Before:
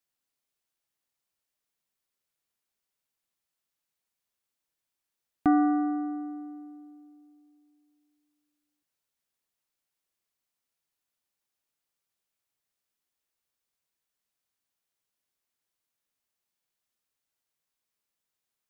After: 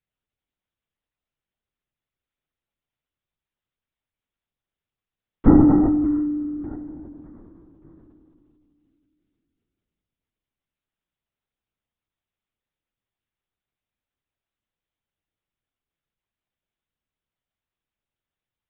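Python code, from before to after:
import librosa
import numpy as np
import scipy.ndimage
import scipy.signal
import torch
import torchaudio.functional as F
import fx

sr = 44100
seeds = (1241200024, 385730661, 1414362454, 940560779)

p1 = fx.peak_eq(x, sr, hz=280.0, db=12.0, octaves=0.52)
p2 = p1 + fx.echo_feedback(p1, sr, ms=594, feedback_pct=47, wet_db=-18.0, dry=0)
y = fx.lpc_vocoder(p2, sr, seeds[0], excitation='whisper', order=10)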